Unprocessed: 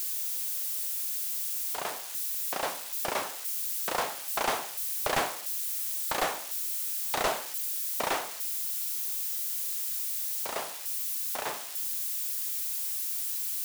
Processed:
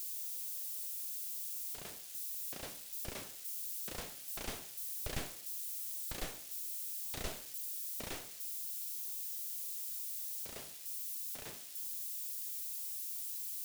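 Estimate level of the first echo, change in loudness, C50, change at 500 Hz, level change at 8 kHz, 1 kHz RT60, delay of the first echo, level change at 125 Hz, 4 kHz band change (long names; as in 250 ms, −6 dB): no echo audible, −10.0 dB, no reverb audible, −16.0 dB, −9.5 dB, no reverb audible, no echo audible, −0.5 dB, −11.0 dB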